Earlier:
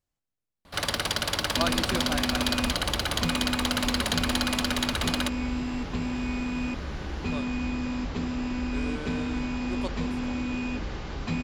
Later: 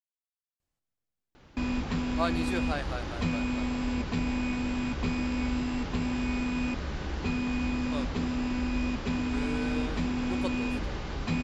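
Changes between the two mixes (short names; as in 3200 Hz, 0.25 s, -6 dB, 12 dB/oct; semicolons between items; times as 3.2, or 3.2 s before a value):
speech: entry +0.60 s; first sound: muted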